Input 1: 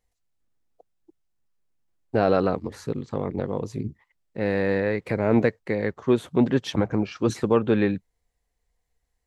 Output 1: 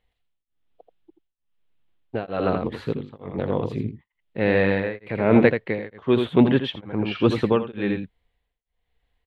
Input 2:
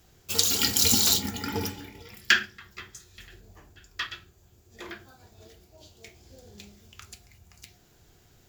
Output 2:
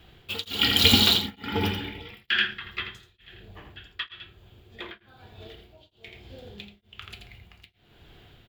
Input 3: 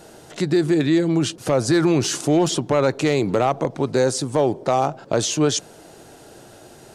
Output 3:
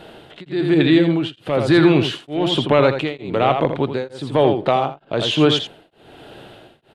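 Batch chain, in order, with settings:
resonant high shelf 4500 Hz -11.5 dB, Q 3; on a send: echo 83 ms -7.5 dB; on the sum: beating tremolo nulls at 1.1 Hz; normalise peaks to -1.5 dBFS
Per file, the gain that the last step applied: +4.0, +6.5, +4.0 dB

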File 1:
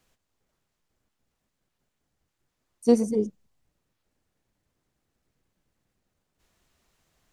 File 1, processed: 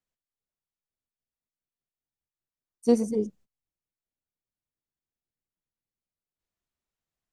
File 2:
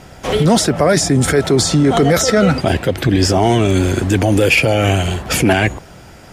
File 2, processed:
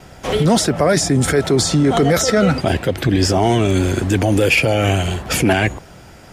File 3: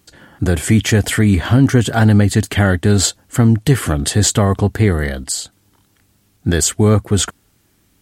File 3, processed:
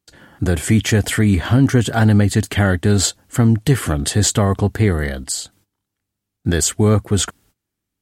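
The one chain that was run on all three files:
gate -49 dBFS, range -20 dB; gain -2 dB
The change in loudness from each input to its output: -2.0, -2.0, -2.0 LU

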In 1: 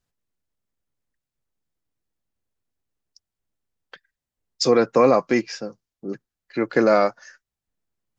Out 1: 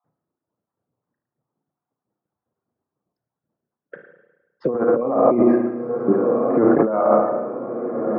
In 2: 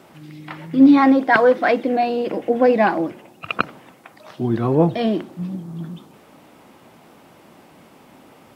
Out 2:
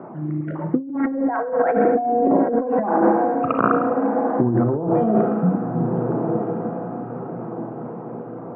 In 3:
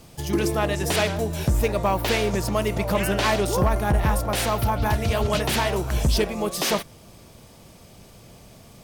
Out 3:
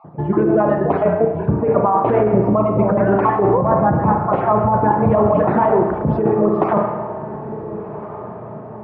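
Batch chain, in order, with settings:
random spectral dropouts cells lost 25%; HPF 120 Hz 24 dB/oct; reverb removal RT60 1.7 s; LPF 1200 Hz 24 dB/oct; diffused feedback echo 1.447 s, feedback 43%, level -15.5 dB; spring tank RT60 1.1 s, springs 33/51 ms, chirp 30 ms, DRR 3.5 dB; negative-ratio compressor -25 dBFS, ratio -1; normalise peaks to -2 dBFS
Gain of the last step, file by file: +8.5, +5.5, +11.5 dB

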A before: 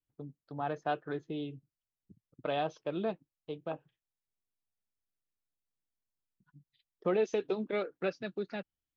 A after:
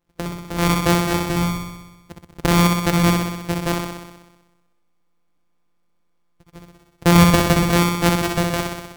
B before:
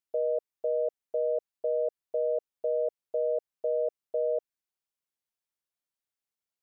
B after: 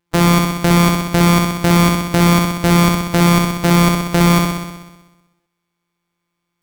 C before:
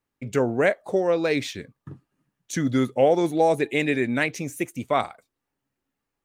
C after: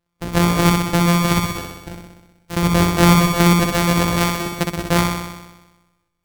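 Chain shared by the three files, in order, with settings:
sample sorter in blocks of 256 samples; flutter echo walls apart 10.8 m, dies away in 1.1 s; harmonic-percussive split harmonic -5 dB; normalise peaks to -1.5 dBFS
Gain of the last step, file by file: +20.5, +19.5, +9.5 dB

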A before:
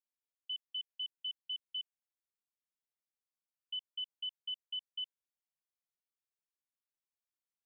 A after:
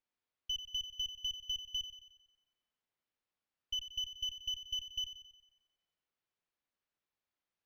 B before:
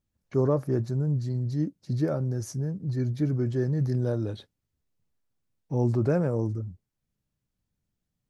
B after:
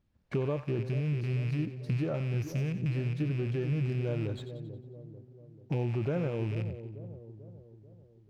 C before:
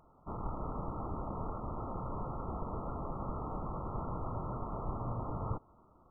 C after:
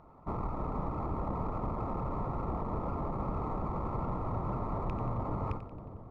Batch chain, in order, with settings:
rattling part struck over -29 dBFS, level -31 dBFS; dynamic EQ 250 Hz, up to -5 dB, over -44 dBFS, Q 4.8; compressor 4:1, threshold -38 dBFS; air absorption 150 m; split-band echo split 730 Hz, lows 0.44 s, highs 90 ms, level -11 dB; running maximum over 3 samples; gain +7.5 dB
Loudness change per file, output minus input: +2.5, -5.0, +4.0 LU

